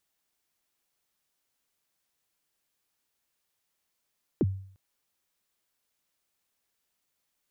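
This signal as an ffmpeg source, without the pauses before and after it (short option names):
-f lavfi -i "aevalsrc='0.119*pow(10,-3*t/0.55)*sin(2*PI*(440*0.036/log(96/440)*(exp(log(96/440)*min(t,0.036)/0.036)-1)+96*max(t-0.036,0)))':d=0.35:s=44100"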